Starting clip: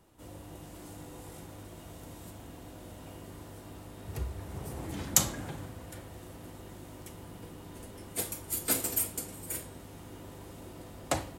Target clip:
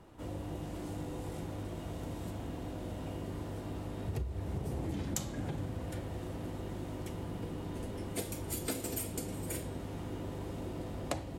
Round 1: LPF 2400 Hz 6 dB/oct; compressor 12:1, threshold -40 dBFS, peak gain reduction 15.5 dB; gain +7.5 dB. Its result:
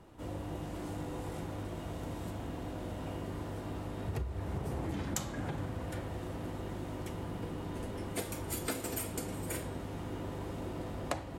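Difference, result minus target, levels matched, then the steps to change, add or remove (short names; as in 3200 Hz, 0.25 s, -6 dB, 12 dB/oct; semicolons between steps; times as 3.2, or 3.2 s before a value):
1000 Hz band +3.0 dB
add after LPF: dynamic EQ 1300 Hz, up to -7 dB, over -57 dBFS, Q 0.75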